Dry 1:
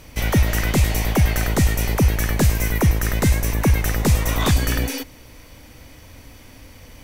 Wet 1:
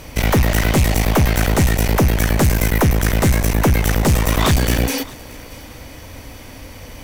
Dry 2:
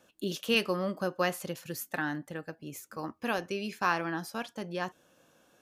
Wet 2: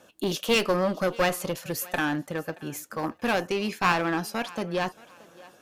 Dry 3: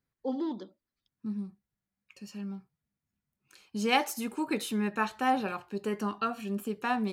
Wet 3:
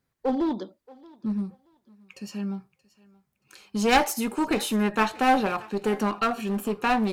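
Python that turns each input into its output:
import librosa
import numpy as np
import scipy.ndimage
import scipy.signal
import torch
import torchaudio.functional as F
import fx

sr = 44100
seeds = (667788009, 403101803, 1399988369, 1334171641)

y = fx.peak_eq(x, sr, hz=670.0, db=3.0, octaves=1.6)
y = fx.clip_asym(y, sr, top_db=-30.0, bottom_db=-12.5)
y = fx.echo_thinned(y, sr, ms=627, feedback_pct=30, hz=370.0, wet_db=-21.0)
y = y * librosa.db_to_amplitude(7.0)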